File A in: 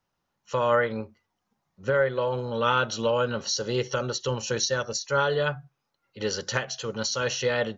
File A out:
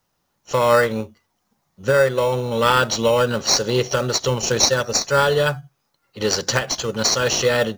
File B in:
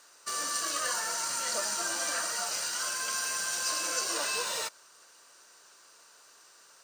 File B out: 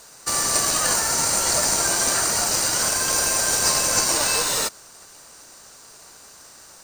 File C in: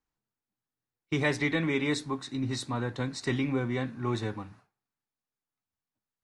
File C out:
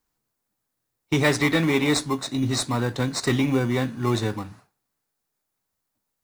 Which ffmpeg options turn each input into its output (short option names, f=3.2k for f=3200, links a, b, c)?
-filter_complex "[0:a]highshelf=f=4.8k:g=11,asplit=2[a][b];[b]acrusher=samples=14:mix=1:aa=0.000001,volume=-8dB[c];[a][c]amix=inputs=2:normalize=0,volume=4.5dB"